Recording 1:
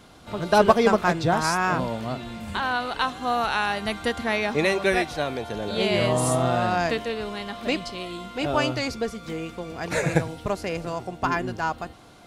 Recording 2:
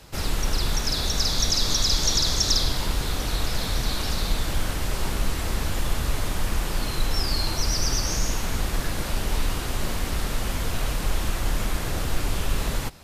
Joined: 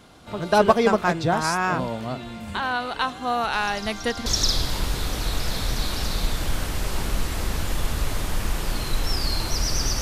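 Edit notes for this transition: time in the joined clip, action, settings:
recording 1
3.53 add recording 2 from 1.6 s 0.73 s -17 dB
4.26 switch to recording 2 from 2.33 s

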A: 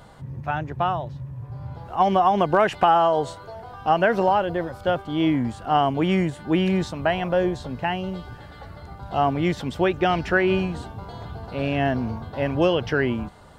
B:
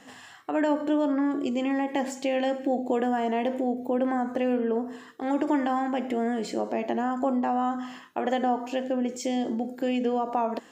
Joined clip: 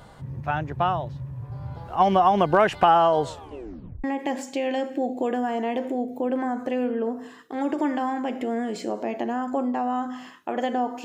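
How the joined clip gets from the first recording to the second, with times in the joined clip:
A
3.27 tape stop 0.77 s
4.04 switch to B from 1.73 s

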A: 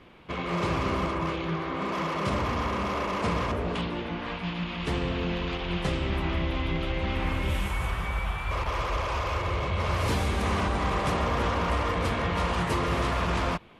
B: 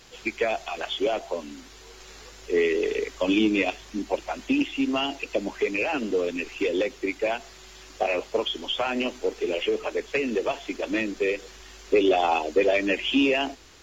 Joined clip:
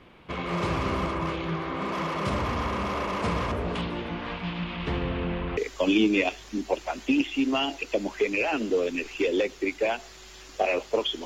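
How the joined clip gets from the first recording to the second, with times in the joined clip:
A
4.21–5.57 LPF 7900 Hz -> 1800 Hz
5.57 switch to B from 2.98 s

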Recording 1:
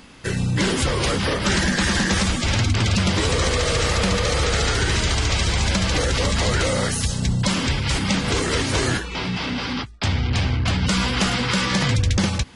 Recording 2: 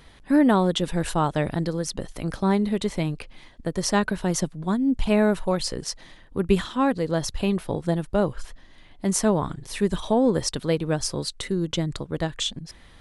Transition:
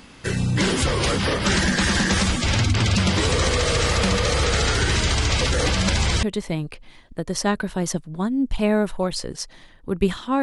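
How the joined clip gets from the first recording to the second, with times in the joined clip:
recording 1
5.41–6.23 reverse
6.23 switch to recording 2 from 2.71 s

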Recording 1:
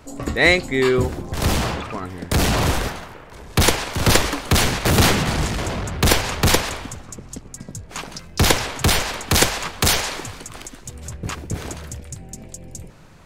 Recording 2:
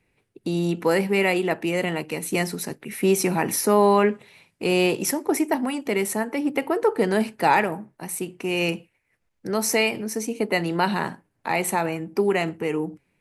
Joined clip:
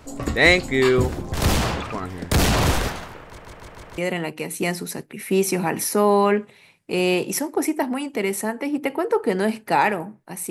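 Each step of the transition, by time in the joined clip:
recording 1
3.23 stutter in place 0.15 s, 5 plays
3.98 switch to recording 2 from 1.7 s

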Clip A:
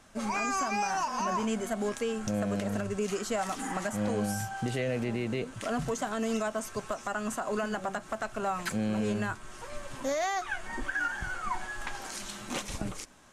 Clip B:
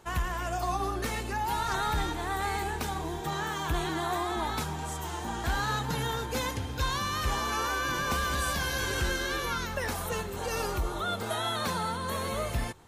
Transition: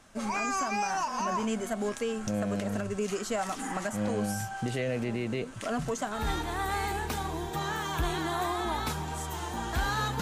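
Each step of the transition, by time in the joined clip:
clip A
6.2 switch to clip B from 1.91 s, crossfade 0.20 s

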